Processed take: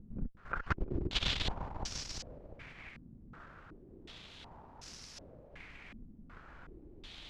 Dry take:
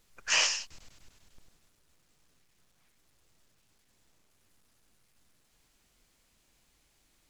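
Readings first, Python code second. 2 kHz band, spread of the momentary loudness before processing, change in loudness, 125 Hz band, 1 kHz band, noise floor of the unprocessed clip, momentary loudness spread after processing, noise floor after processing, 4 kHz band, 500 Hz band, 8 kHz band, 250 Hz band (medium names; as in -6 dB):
-7.0 dB, 7 LU, -13.0 dB, +23.5 dB, +1.0 dB, -71 dBFS, 20 LU, -56 dBFS, -4.0 dB, +4.5 dB, -13.0 dB, +21.0 dB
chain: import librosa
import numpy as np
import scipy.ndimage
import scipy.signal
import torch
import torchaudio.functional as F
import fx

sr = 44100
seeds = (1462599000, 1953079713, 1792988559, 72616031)

p1 = fx.low_shelf(x, sr, hz=190.0, db=3.5)
p2 = fx.over_compress(p1, sr, threshold_db=-51.0, ratio=-0.5)
p3 = fx.cheby_harmonics(p2, sr, harmonics=(7,), levels_db=(-19,), full_scale_db=-31.0)
p4 = p3 + fx.echo_feedback(p3, sr, ms=347, feedback_pct=53, wet_db=-4.5, dry=0)
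p5 = fx.filter_held_lowpass(p4, sr, hz=2.7, low_hz=230.0, high_hz=5500.0)
y = F.gain(torch.from_numpy(p5), 15.0).numpy()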